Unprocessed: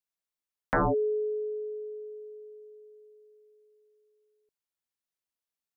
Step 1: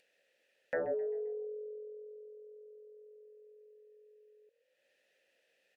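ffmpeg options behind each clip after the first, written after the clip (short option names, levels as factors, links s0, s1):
-filter_complex "[0:a]asplit=3[s0][s1][s2];[s0]bandpass=f=530:t=q:w=8,volume=1[s3];[s1]bandpass=f=1840:t=q:w=8,volume=0.501[s4];[s2]bandpass=f=2480:t=q:w=8,volume=0.355[s5];[s3][s4][s5]amix=inputs=3:normalize=0,asplit=5[s6][s7][s8][s9][s10];[s7]adelay=131,afreqshift=42,volume=0.126[s11];[s8]adelay=262,afreqshift=84,volume=0.0543[s12];[s9]adelay=393,afreqshift=126,volume=0.0232[s13];[s10]adelay=524,afreqshift=168,volume=0.01[s14];[s6][s11][s12][s13][s14]amix=inputs=5:normalize=0,acompressor=mode=upward:threshold=0.00282:ratio=2.5,volume=1.33"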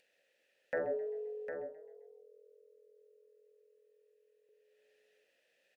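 -filter_complex "[0:a]asplit=2[s0][s1];[s1]adelay=46,volume=0.224[s2];[s0][s2]amix=inputs=2:normalize=0,asplit=2[s3][s4];[s4]aecho=0:1:754:0.398[s5];[s3][s5]amix=inputs=2:normalize=0,volume=0.891"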